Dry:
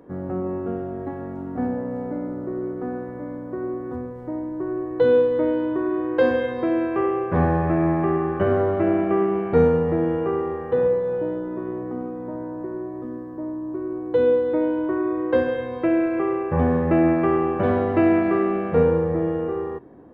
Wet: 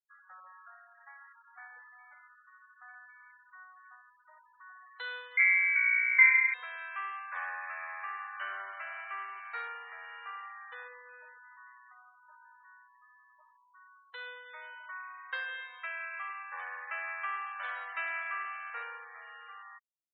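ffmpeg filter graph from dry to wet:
-filter_complex "[0:a]asettb=1/sr,asplit=3[s0][s1][s2];[s0]atrim=end=5.374[s3];[s1]atrim=start=5.37:end=6.54,asetpts=PTS-STARTPTS,afade=t=in:d=0.004:c=qsin,afade=t=out:st=1.166:d=0.004:c=qsin,aemphasis=mode=production:type=bsi,lowpass=f=2200:t=q:w=0.5098,lowpass=f=2200:t=q:w=0.6013,lowpass=f=2200:t=q:w=0.9,lowpass=f=2200:t=q:w=2.563,afreqshift=-2600[s4];[s2]atrim=start=6.536[s5];[s3][s4]acrossfade=d=0.004:c1=hsin:c2=qsin[s6];[s6][s5]acrossfade=d=0.004:c1=qsin:c2=hsin,highpass=f=1400:w=0.5412,highpass=f=1400:w=1.3066,afftfilt=real='re*gte(hypot(re,im),0.00501)':imag='im*gte(hypot(re,im),0.00501)':win_size=1024:overlap=0.75,volume=0.891"

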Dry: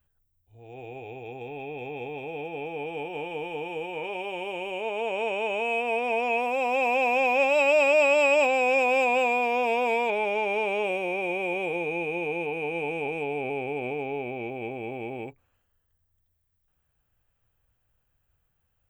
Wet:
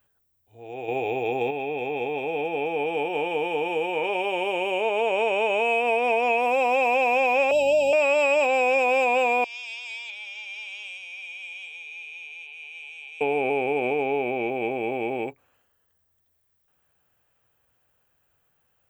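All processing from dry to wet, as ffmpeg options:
-filter_complex "[0:a]asettb=1/sr,asplit=3[s0][s1][s2];[s0]atrim=end=0.884[s3];[s1]atrim=start=0.88:end=1.51,asetpts=PTS-STARTPTS,afade=t=in:d=0.004:c=qsin,afade=t=out:st=0.626:d=0.004:c=qsin,bandreject=f=1500:w=17,acontrast=52[s4];[s2]atrim=start=1.506[s5];[s3][s4]acrossfade=d=0.004:c1=hsin:c2=qsin[s6];[s6][s5]acrossfade=d=0.004:c1=qsin:c2=hsin,asettb=1/sr,asplit=3[s7][s8][s9];[s7]atrim=end=7.514[s10];[s8]atrim=start=7.51:end=7.93,asetpts=PTS-STARTPTS,afade=t=in:d=0.004:c=qsin,afade=t=out:st=0.416:d=0.004:c=qsin,aeval=exprs='val(0)+0.01*(sin(2*PI*50*n/s)+sin(2*PI*2*50*n/s)/2+sin(2*PI*3*50*n/s)/3+sin(2*PI*4*50*n/s)/4+sin(2*PI*5*50*n/s)/5)':c=same,asuperstop=centerf=1500:order=12:qfactor=0.78[s11];[s9]atrim=start=7.926[s12];[s10][s11]acrossfade=d=0.004:c1=hsin:c2=qsin[s13];[s13][s12]acrossfade=d=0.004:c1=qsin:c2=hsin,asettb=1/sr,asplit=3[s14][s15][s16];[s14]atrim=end=9.444[s17];[s15]atrim=start=9.44:end=13.21,asetpts=PTS-STARTPTS,afade=t=in:d=0.004:c=qsin,afade=t=out:st=3.766:d=0.004:c=qsin,asuperpass=centerf=4800:order=4:qfactor=1.4,afreqshift=-14[s18];[s16]atrim=start=13.206[s19];[s17][s18]acrossfade=d=0.004:c1=hsin:c2=qsin[s20];[s20][s19]acrossfade=d=0.004:c1=qsin:c2=hsin,highpass=f=320:p=1,equalizer=f=420:t=o:w=2.6:g=2.5,acompressor=threshold=0.0501:ratio=4,volume=2.24"

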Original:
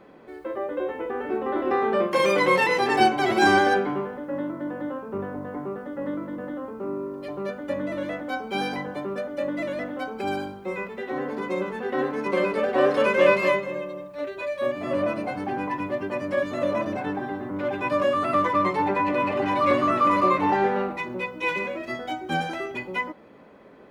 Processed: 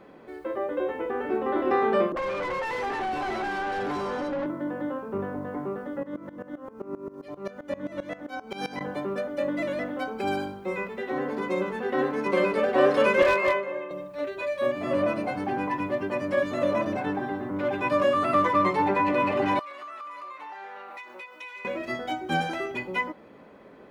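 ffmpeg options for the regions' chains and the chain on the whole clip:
-filter_complex "[0:a]asettb=1/sr,asplit=3[s0][s1][s2];[s0]atrim=end=2.124[s3];[s1]atrim=start=2.12:end=4.46,asetpts=PTS-STARTPTS,afade=t=in:d=0.004:c=qsin,afade=t=out:st=2.336:d=0.004:c=qsin,acompressor=threshold=0.0398:ratio=8:attack=3.2:release=140:knee=1:detection=peak,acrossover=split=400|3300[s4][s5][s6];[s5]adelay=40[s7];[s6]adelay=540[s8];[s4][s7][s8]amix=inputs=3:normalize=0,atrim=end_sample=103194,asplit=2[s9][s10];[s10]highpass=f=720:p=1,volume=14.1,asoftclip=type=tanh:threshold=0.0891[s11];[s9][s11]amix=inputs=2:normalize=0,lowpass=f=1100:p=1,volume=0.501[s12];[s2]atrim=start=4.456[s13];[s3][s12]acrossfade=d=0.004:c1=hsin:c2=qsin[s14];[s14][s13]acrossfade=d=0.004:c1=qsin:c2=hsin,asettb=1/sr,asplit=3[s15][s16][s17];[s15]atrim=end=6.034[s18];[s16]atrim=start=6.03:end=8.81,asetpts=PTS-STARTPTS,afade=t=in:d=0.004:c=qsin,afade=t=out:st=2.776:d=0.004:c=qsin,equalizer=f=6000:t=o:w=0.5:g=5,aeval=exprs='val(0)*pow(10,-18*if(lt(mod(-7.6*n/s,1),2*abs(-7.6)/1000),1-mod(-7.6*n/s,1)/(2*abs(-7.6)/1000),(mod(-7.6*n/s,1)-2*abs(-7.6)/1000)/(1-2*abs(-7.6)/1000))/20)':c=same[s19];[s17]atrim=start=8.806[s20];[s18][s19]acrossfade=d=0.004:c1=hsin:c2=qsin[s21];[s21][s20]acrossfade=d=0.004:c1=qsin:c2=hsin,asettb=1/sr,asplit=3[s22][s23][s24];[s22]atrim=end=13.224[s25];[s23]atrim=start=13.22:end=13.91,asetpts=PTS-STARTPTS,afade=t=in:d=0.004:c=qsin,afade=t=out:st=0.686:d=0.004:c=qsin,acrossover=split=330 2600:gain=0.141 1 0.224[s26][s27][s28];[s26][s27][s28]amix=inputs=3:normalize=0,asplit=2[s29][s30];[s30]adelay=35,volume=0.447[s31];[s29][s31]amix=inputs=2:normalize=0,atrim=end_sample=30429,volume=6.68,asoftclip=hard,volume=0.15[s32];[s24]atrim=start=13.906[s33];[s25][s32]acrossfade=d=0.004:c1=hsin:c2=qsin[s34];[s34][s33]acrossfade=d=0.004:c1=qsin:c2=hsin,asettb=1/sr,asplit=3[s35][s36][s37];[s35]atrim=end=19.594[s38];[s36]atrim=start=19.59:end=21.65,asetpts=PTS-STARTPTS,afade=t=in:d=0.004:c=qsin,afade=t=out:st=2.056:d=0.004:c=qsin,highpass=900,acompressor=threshold=0.0141:ratio=12:attack=3.2:release=140:knee=1:detection=peak[s39];[s37]atrim=start=21.646[s40];[s38][s39]acrossfade=d=0.004:c1=hsin:c2=qsin[s41];[s41][s40]acrossfade=d=0.004:c1=qsin:c2=hsin"

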